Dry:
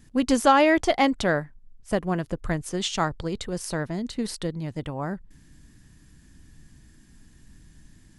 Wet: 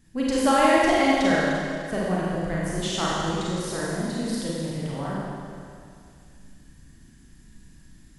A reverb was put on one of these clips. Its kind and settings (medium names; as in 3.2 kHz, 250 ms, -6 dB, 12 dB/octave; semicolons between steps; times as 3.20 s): Schroeder reverb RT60 2.3 s, combs from 33 ms, DRR -6.5 dB; trim -6 dB